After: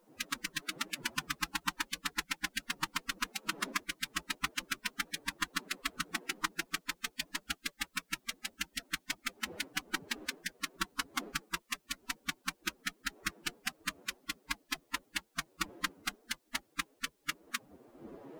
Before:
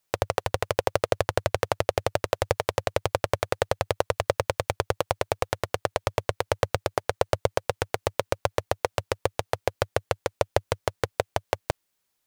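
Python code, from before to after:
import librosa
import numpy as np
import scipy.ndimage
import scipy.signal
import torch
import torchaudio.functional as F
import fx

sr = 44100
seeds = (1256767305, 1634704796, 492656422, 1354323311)

y = fx.dmg_wind(x, sr, seeds[0], corner_hz=130.0, level_db=-42.0)
y = fx.spec_gate(y, sr, threshold_db=-15, keep='weak')
y = fx.stretch_vocoder(y, sr, factor=1.5)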